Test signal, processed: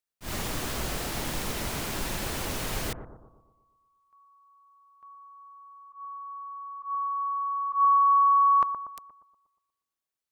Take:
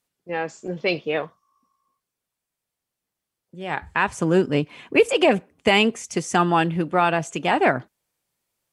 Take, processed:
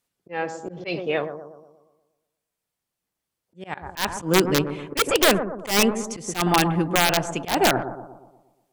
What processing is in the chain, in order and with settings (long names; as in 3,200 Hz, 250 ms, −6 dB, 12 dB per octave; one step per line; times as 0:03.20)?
wrap-around overflow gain 8.5 dB
bucket-brigade delay 119 ms, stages 1,024, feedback 50%, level −9 dB
volume swells 119 ms